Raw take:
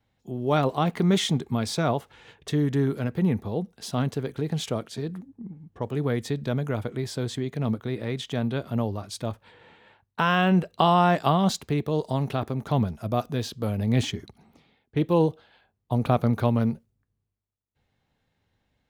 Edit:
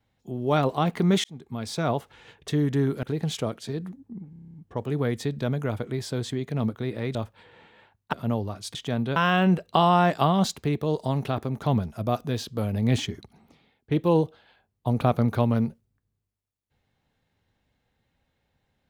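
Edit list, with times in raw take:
1.24–1.97 fade in
3.03–4.32 cut
5.59 stutter 0.03 s, 9 plays
8.2–8.61 swap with 9.23–10.21

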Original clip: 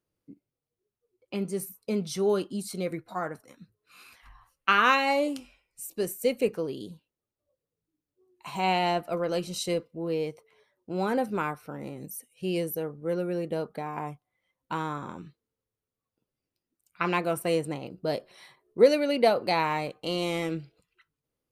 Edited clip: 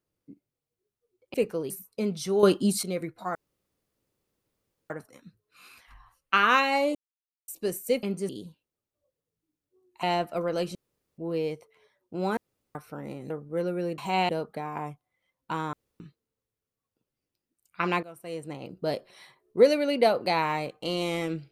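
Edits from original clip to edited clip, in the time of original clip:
1.34–1.6 swap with 6.38–6.74
2.33–2.73 gain +9 dB
3.25 insert room tone 1.55 s
5.3–5.83 mute
8.48–8.79 move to 13.5
9.51–9.94 room tone
11.13–11.51 room tone
12.06–12.82 cut
14.94–15.21 room tone
17.24–17.9 fade in quadratic, from -18 dB

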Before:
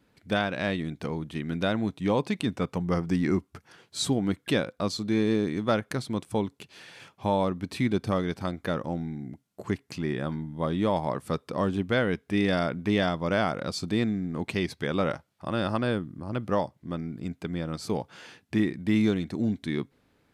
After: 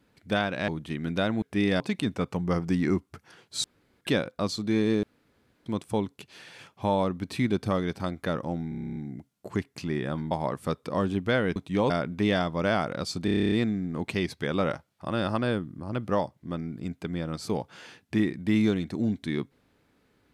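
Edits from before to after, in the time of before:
0.68–1.13 cut
1.87–2.21 swap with 12.19–12.57
4.05–4.42 room tone
5.44–6.07 room tone
9.1 stutter 0.03 s, 10 plays
10.45–10.94 cut
13.92 stutter 0.03 s, 10 plays

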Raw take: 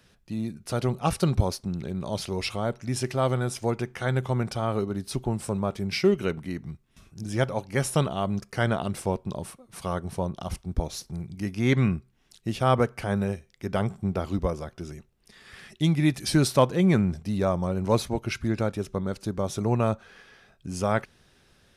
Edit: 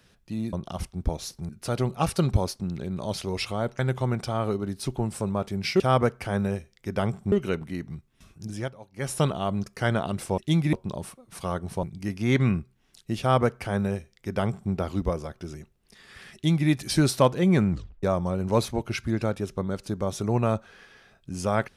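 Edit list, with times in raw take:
2.83–4.07 cut
7.22–7.95 dip -16.5 dB, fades 0.28 s
10.24–11.2 move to 0.53
12.57–14.09 copy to 6.08
15.71–16.06 copy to 9.14
17.08 tape stop 0.32 s

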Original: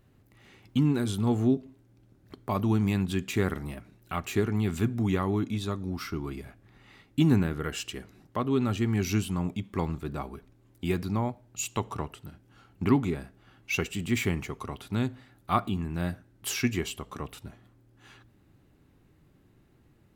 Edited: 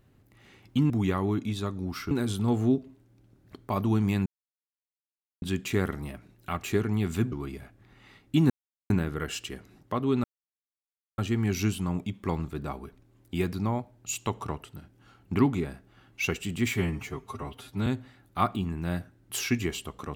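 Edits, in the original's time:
3.05 insert silence 1.16 s
4.95–6.16 move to 0.9
7.34 insert silence 0.40 s
8.68 insert silence 0.94 s
14.24–14.99 stretch 1.5×

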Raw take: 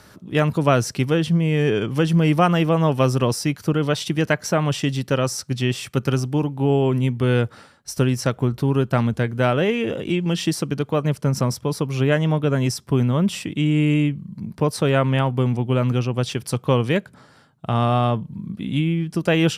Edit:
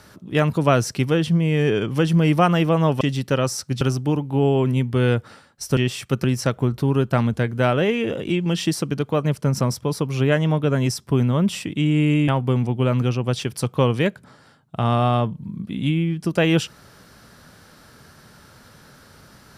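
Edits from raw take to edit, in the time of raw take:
3.01–4.81 cut
5.61–6.08 move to 8.04
14.08–15.18 cut

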